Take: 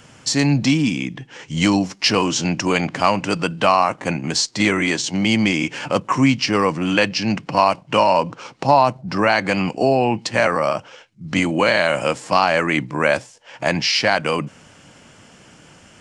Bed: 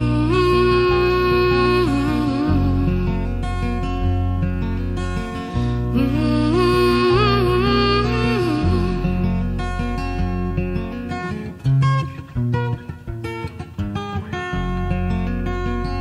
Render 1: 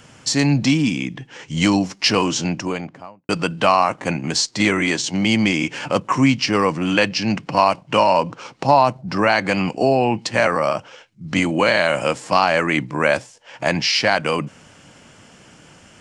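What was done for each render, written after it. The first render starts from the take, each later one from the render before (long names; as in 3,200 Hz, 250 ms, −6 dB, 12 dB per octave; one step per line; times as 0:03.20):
0:02.23–0:03.29: fade out and dull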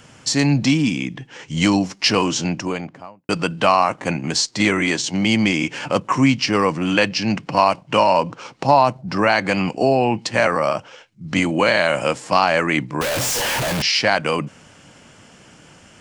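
0:13.01–0:13.82: sign of each sample alone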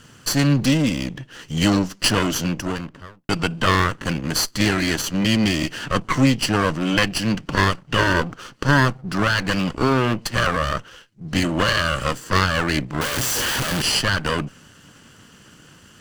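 lower of the sound and its delayed copy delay 0.66 ms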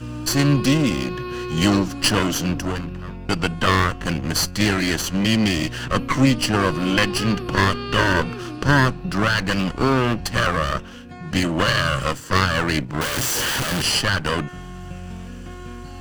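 mix in bed −13 dB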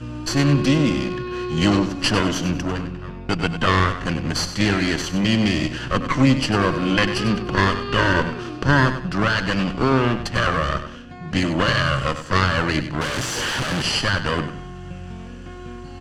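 high-frequency loss of the air 66 metres
repeating echo 97 ms, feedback 30%, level −10.5 dB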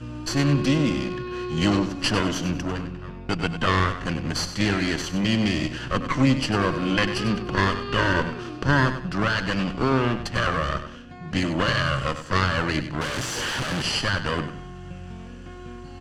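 level −3.5 dB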